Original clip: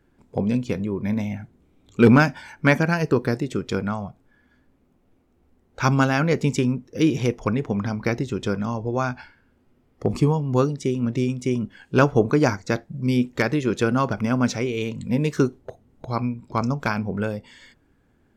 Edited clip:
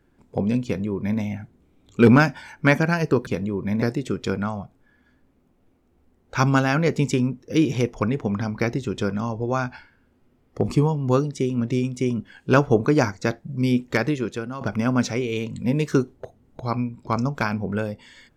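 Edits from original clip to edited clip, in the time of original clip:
0.65–1.2 copy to 3.27
13.54–14.06 fade out quadratic, to -12.5 dB

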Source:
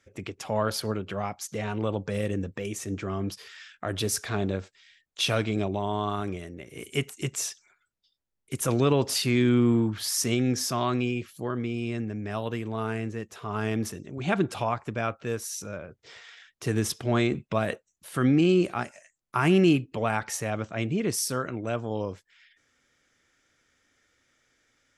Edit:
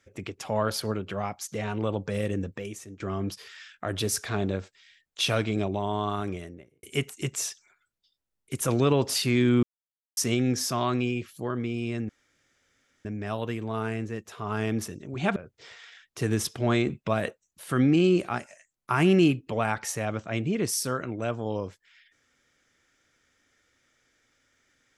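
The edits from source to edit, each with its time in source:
2.47–3 fade out, to -19.5 dB
6.38–6.83 studio fade out
9.63–10.17 mute
12.09 insert room tone 0.96 s
14.4–15.81 cut

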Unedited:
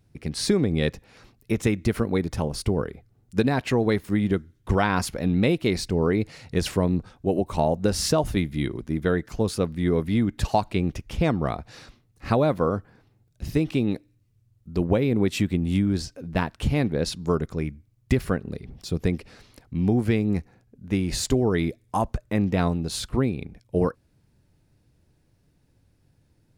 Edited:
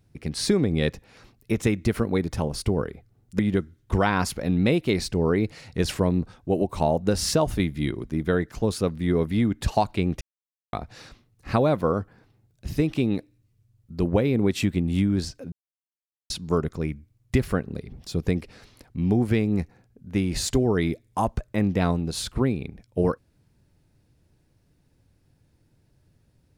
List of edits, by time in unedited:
3.39–4.16 cut
10.98–11.5 mute
16.29–17.07 mute

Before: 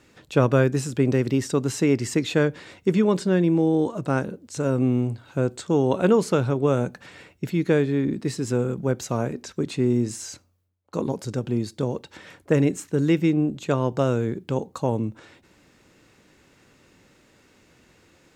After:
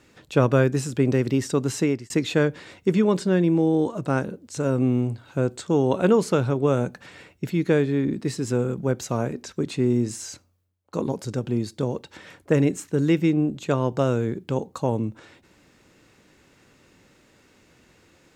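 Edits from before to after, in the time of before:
1.81–2.1 fade out

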